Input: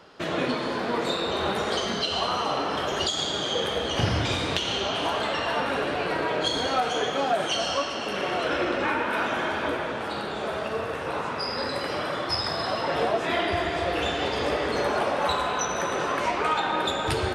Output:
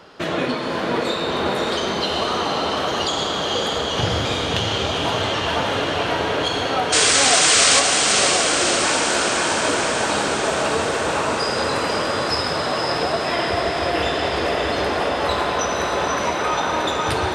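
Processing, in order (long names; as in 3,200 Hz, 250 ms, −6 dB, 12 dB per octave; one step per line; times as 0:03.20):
speech leveller
sound drawn into the spectrogram noise, 0:06.92–0:07.80, 1,000–9,200 Hz −19 dBFS
feedback delay with all-pass diffusion 556 ms, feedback 72%, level −3.5 dB
level +2.5 dB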